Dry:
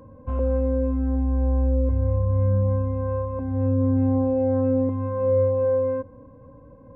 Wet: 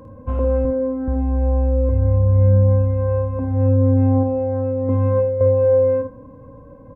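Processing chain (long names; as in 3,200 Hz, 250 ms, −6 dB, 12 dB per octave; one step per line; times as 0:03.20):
0:00.65–0:01.08: elliptic band-pass filter 110–1,900 Hz
0:04.23–0:05.41: compressor whose output falls as the input rises −25 dBFS, ratio −1
ambience of single reflections 52 ms −7.5 dB, 79 ms −15 dB
level +5 dB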